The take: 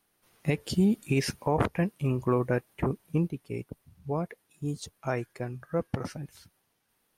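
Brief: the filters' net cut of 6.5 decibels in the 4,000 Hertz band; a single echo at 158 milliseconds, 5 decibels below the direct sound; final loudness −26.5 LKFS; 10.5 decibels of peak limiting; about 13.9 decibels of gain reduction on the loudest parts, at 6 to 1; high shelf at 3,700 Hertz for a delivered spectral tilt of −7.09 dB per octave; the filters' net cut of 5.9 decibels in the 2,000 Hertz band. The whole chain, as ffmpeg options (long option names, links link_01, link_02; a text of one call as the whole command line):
ffmpeg -i in.wav -af "equalizer=frequency=2000:width_type=o:gain=-5.5,highshelf=frequency=3700:gain=-4.5,equalizer=frequency=4000:width_type=o:gain=-4,acompressor=threshold=-36dB:ratio=6,alimiter=level_in=10.5dB:limit=-24dB:level=0:latency=1,volume=-10.5dB,aecho=1:1:158:0.562,volume=18.5dB" out.wav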